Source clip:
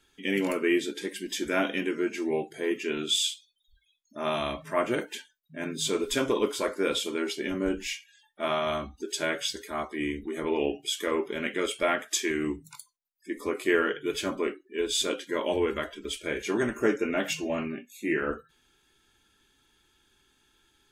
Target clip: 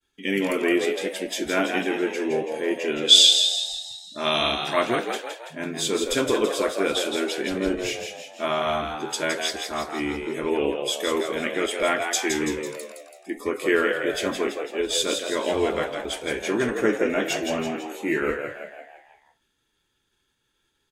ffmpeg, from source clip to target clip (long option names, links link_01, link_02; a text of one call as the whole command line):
ffmpeg -i in.wav -filter_complex "[0:a]agate=range=-33dB:threshold=-58dB:ratio=3:detection=peak,asettb=1/sr,asplit=3[link_01][link_02][link_03];[link_01]atrim=end=3.084[link_04];[link_02]atrim=start=3.08:end=4.87,asetpts=PTS-STARTPTS,afade=type=in:duration=0.004:curve=qsin,afade=type=out:start_time=1.786:duration=0.004:curve=qsin,equalizer=frequency=4300:width_type=o:width=1.6:gain=12.5[link_05];[link_03]atrim=start=4.866[link_06];[link_04][link_05]acrossfade=duration=0.004:curve1=hsin:curve2=qsin[link_07];[link_07][link_06]acrossfade=duration=0.004:curve1=qsin:curve2=hsin,asplit=7[link_08][link_09][link_10][link_11][link_12][link_13][link_14];[link_09]adelay=166,afreqshift=74,volume=-6dB[link_15];[link_10]adelay=332,afreqshift=148,volume=-11.8dB[link_16];[link_11]adelay=498,afreqshift=222,volume=-17.7dB[link_17];[link_12]adelay=664,afreqshift=296,volume=-23.5dB[link_18];[link_13]adelay=830,afreqshift=370,volume=-29.4dB[link_19];[link_14]adelay=996,afreqshift=444,volume=-35.2dB[link_20];[link_08][link_15][link_16][link_17][link_18][link_19][link_20]amix=inputs=7:normalize=0,volume=3dB" out.wav